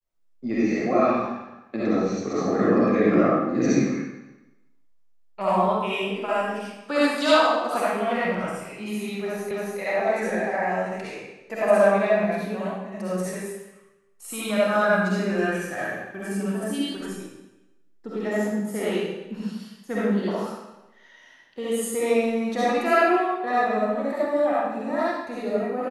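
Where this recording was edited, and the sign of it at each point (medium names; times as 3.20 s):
9.51 s: repeat of the last 0.28 s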